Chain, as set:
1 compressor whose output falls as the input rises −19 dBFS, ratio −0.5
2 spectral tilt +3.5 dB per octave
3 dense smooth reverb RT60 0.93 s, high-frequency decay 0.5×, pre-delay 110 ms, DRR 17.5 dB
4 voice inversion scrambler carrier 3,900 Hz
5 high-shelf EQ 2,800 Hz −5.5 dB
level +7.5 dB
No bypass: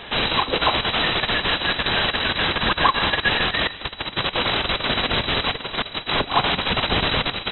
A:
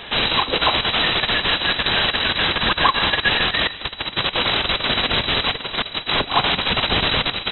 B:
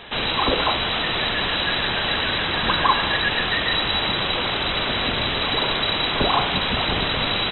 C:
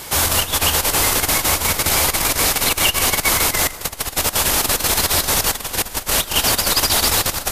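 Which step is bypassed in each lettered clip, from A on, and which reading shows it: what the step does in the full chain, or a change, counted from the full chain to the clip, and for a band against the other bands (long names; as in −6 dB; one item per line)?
5, 4 kHz band +3.0 dB
1, change in crest factor −3.0 dB
4, 125 Hz band +2.5 dB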